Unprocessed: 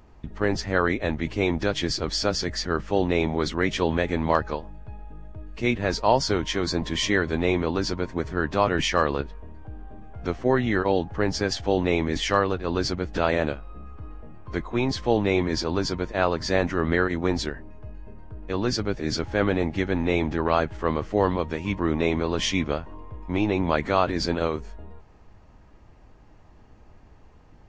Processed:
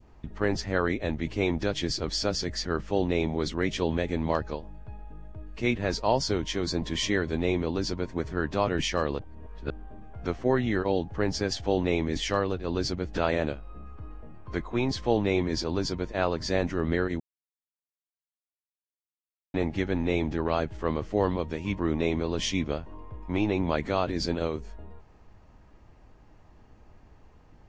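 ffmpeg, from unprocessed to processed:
-filter_complex "[0:a]asplit=5[a][b][c][d][e];[a]atrim=end=9.192[f];[b]atrim=start=9.188:end=9.702,asetpts=PTS-STARTPTS,areverse[g];[c]atrim=start=9.698:end=17.2,asetpts=PTS-STARTPTS,afade=t=out:st=7.498:d=0.004:c=hsin[h];[d]atrim=start=17.2:end=19.54,asetpts=PTS-STARTPTS,volume=0[i];[e]atrim=start=19.54,asetpts=PTS-STARTPTS,afade=t=in:d=0.004:c=hsin[j];[f][g]acrossfade=d=0.004:c1=hsin:c2=hsin[k];[h][i][j]concat=n=3:v=0:a=1[l];[k][l]acrossfade=d=0.004:c1=hsin:c2=hsin,adynamicequalizer=threshold=0.0126:dfrequency=1300:dqfactor=0.78:tfrequency=1300:tqfactor=0.78:attack=5:release=100:ratio=0.375:range=4:mode=cutabove:tftype=bell,volume=-2.5dB"

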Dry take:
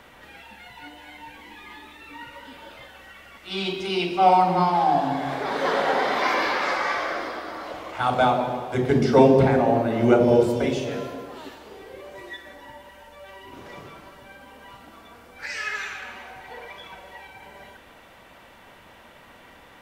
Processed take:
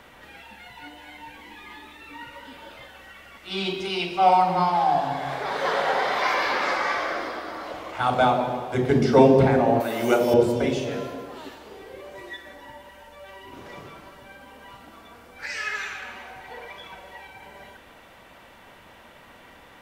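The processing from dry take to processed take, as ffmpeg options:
-filter_complex "[0:a]asettb=1/sr,asplit=3[a][b][c];[a]atrim=end=3.884[d];[b]atrim=start=3.88:end=6.5,asetpts=PTS-STARTPTS,afade=t=in:d=0.004:c=qsin,afade=t=out:st=2.616:d=0.004:c=qsin,equalizer=f=270:w=1.5:g=-9.5[e];[c]atrim=start=6.496[f];[d][e]acrossfade=d=0.004:c1=hsin:c2=qsin[g];[g][f]acrossfade=d=0.004:c1=qsin:c2=hsin,asettb=1/sr,asplit=3[h][i][j];[h]atrim=end=9.804[k];[i]atrim=start=9.8:end=10.34,asetpts=PTS-STARTPTS,afade=t=in:d=0.004:c=qsin,afade=t=out:st=0.536:d=0.004:c=qsin,aemphasis=mode=production:type=riaa[l];[j]atrim=start=10.336[m];[k][l]acrossfade=d=0.004:c1=hsin:c2=qsin[n];[n][m]acrossfade=d=0.004:c1=qsin:c2=hsin"

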